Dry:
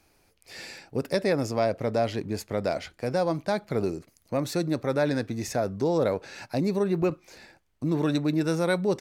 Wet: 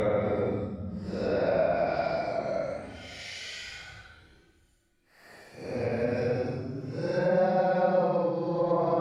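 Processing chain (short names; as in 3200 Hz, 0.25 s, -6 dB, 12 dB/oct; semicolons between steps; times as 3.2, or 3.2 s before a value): Paulstretch 12×, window 0.05 s, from 2.55; treble ducked by the level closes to 2300 Hz, closed at -20 dBFS; gain -1.5 dB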